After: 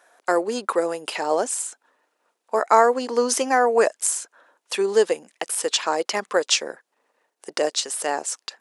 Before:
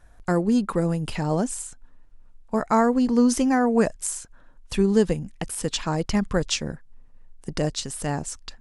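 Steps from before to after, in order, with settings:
high-pass filter 410 Hz 24 dB per octave
level +6 dB

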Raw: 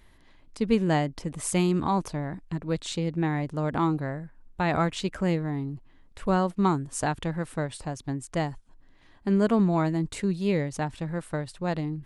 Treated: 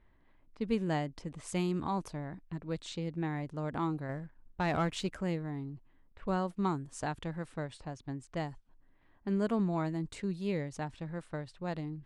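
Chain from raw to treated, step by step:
0:04.09–0:05.15: leveller curve on the samples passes 1
low-pass that shuts in the quiet parts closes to 1,800 Hz, open at −24 dBFS
level −8.5 dB

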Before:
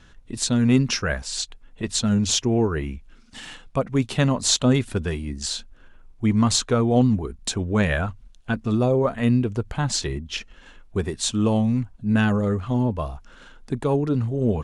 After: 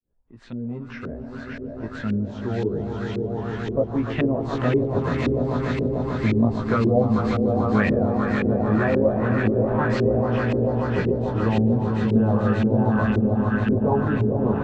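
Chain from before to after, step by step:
fade in at the beginning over 4.87 s
on a send: echo that builds up and dies away 147 ms, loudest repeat 5, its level −8 dB
on the sum: chorus effect 0.18 Hz, delay 17 ms, depth 2.1 ms
auto-filter low-pass saw up 1.9 Hz 360–2,500 Hz
multiband upward and downward compressor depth 40%

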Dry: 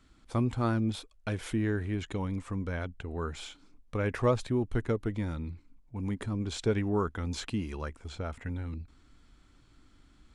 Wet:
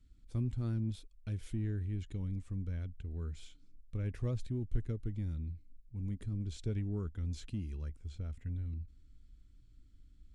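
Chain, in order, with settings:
guitar amp tone stack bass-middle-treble 10-0-1
in parallel at −7.5 dB: asymmetric clip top −42.5 dBFS
on the sum: level +5.5 dB

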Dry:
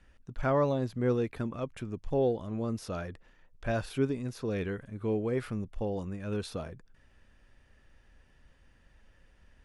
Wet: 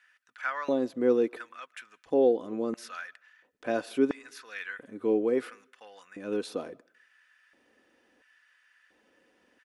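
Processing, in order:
comb filter 4 ms, depth 31%
auto-filter high-pass square 0.73 Hz 330–1,600 Hz
convolution reverb RT60 0.50 s, pre-delay 100 ms, DRR 27 dB

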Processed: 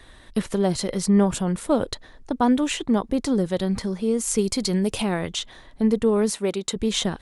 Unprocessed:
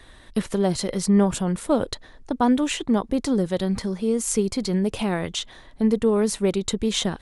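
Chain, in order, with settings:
0:04.38–0:05.02: high-shelf EQ 3,500 Hz +8.5 dB
0:06.31–0:06.76: high-pass filter 320 Hz 6 dB per octave

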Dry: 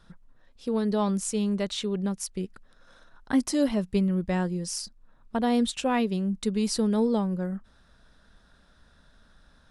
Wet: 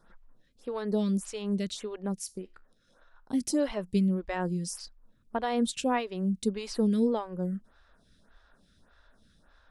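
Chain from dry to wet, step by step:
0:02.19–0:03.41: tuned comb filter 71 Hz, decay 0.31 s, harmonics all, mix 50%
phaser with staggered stages 1.7 Hz

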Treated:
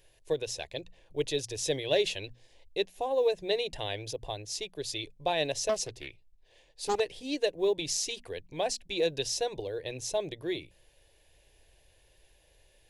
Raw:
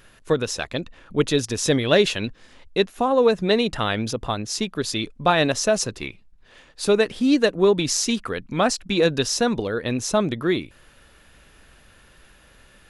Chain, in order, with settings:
mains-hum notches 60/120/180/240 Hz
dynamic equaliser 2,500 Hz, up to +3 dB, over −33 dBFS, Q 0.78
phaser with its sweep stopped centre 540 Hz, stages 4
floating-point word with a short mantissa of 6 bits
0:05.69–0:07.00: highs frequency-modulated by the lows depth 0.53 ms
level −8.5 dB

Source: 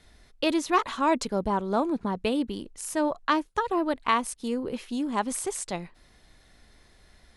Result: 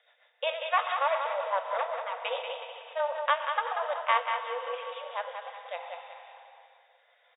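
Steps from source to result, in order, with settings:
0:01.74–0:02.19: lower of the sound and its delayed copy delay 4.4 ms
feedback delay network reverb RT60 3.1 s, high-frequency decay 0.95×, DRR 4 dB
rotating-speaker cabinet horn 7.5 Hz, later 0.65 Hz, at 0:03.84
harmonic generator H 4 −19 dB, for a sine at −11 dBFS
linear-phase brick-wall band-pass 470–3,800 Hz
repeating echo 187 ms, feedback 36%, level −6.5 dB

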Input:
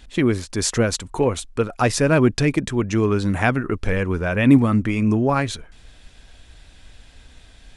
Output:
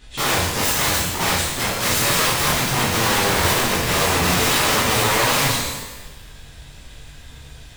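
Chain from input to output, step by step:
wrap-around overflow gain 20 dB
reverb with rising layers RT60 1 s, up +12 semitones, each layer −8 dB, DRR −9 dB
level −3 dB

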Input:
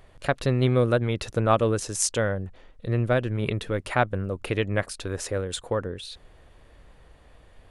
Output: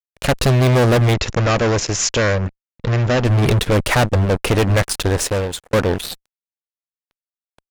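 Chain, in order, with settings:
low-shelf EQ 210 Hz +3 dB
fuzz pedal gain 31 dB, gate −38 dBFS
0:01.14–0:03.25: Chebyshev low-pass with heavy ripple 7,200 Hz, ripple 3 dB
0:04.88–0:05.73: fade out equal-power
level +2 dB

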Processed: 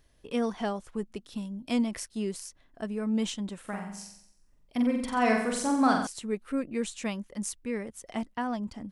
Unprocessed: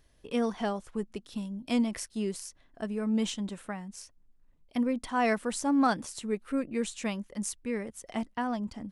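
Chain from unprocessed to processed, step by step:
0:03.60–0:06.07: flutter between parallel walls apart 7.7 metres, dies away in 0.7 s

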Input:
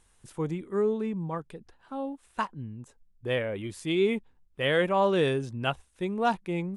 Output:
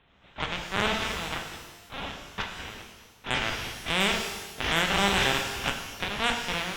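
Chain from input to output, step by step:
compressing power law on the bin magnitudes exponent 0.17
parametric band 100 Hz −13.5 dB 1.2 octaves
background noise pink −64 dBFS
linear-prediction vocoder at 8 kHz pitch kept
harmonic generator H 6 −16 dB, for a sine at −9 dBFS
reverb with rising layers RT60 1.2 s, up +12 semitones, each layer −8 dB, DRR 3 dB

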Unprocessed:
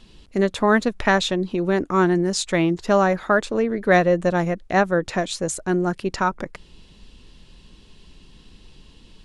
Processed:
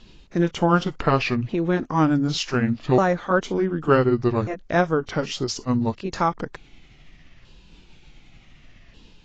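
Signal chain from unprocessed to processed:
pitch shifter swept by a sawtooth −8 semitones, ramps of 1,490 ms
AAC 32 kbit/s 16,000 Hz

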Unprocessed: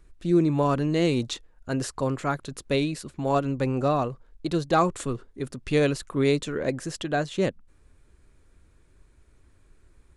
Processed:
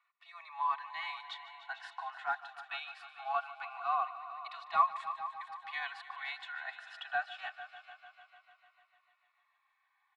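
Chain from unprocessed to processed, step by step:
Butterworth high-pass 780 Hz 72 dB per octave
high-shelf EQ 9,100 Hz −10.5 dB
comb filter 2.7 ms, depth 91%
in parallel at −12 dB: soft clipping −28 dBFS, distortion −6 dB
on the sum: high-frequency loss of the air 460 metres
on a send: echo machine with several playback heads 149 ms, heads all three, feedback 57%, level −17 dB
on the sum: phaser whose notches keep moving one way falling 0.22 Hz
level −1.5 dB

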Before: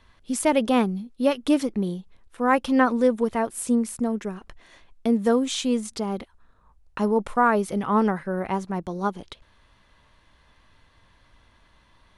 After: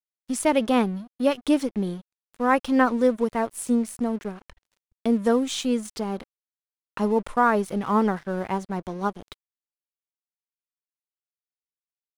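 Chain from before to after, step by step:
dead-zone distortion −43.5 dBFS

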